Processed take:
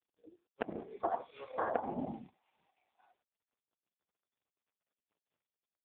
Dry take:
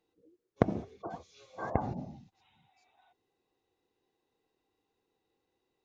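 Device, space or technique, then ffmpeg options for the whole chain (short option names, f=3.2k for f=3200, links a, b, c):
voicemail: -filter_complex "[0:a]highpass=f=56:p=1,agate=range=-33dB:threshold=-59dB:ratio=3:detection=peak,asettb=1/sr,asplit=3[a][b][c];[a]atrim=end=0.834[d];[b]atrim=start=0.83:end=1.52,asetpts=PTS-STARTPTS,afade=t=in:d=0.004:c=qsin,afade=t=out:st=0.686:d=0.004:c=qsin,adynamicequalizer=threshold=0.002:dfrequency=1000:dqfactor=1:tfrequency=1000:tqfactor=1:attack=5:release=100:ratio=0.375:range=3:mode=boostabove:tftype=bell[e];[c]atrim=start=1.516[f];[d][e]acrossfade=d=0.004:c1=hsin:c2=qsin[g];[g][f]acrossfade=d=0.004:c1=qsin:c2=hsin,highpass=300,lowpass=2.6k,asplit=2[h][i];[i]adelay=93.29,volume=-25dB,highshelf=f=4k:g=-2.1[j];[h][j]amix=inputs=2:normalize=0,acompressor=threshold=-42dB:ratio=10,volume=13.5dB" -ar 8000 -c:a libopencore_amrnb -b:a 4750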